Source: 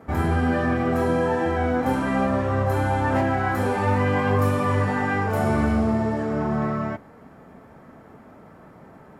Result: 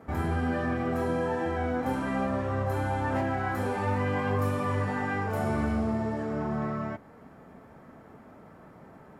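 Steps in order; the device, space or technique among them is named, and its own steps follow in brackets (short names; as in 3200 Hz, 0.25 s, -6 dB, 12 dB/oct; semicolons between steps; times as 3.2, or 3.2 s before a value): parallel compression (in parallel at -4 dB: compressor, threshold -33 dBFS, peak gain reduction 15 dB); on the sum: gain -8 dB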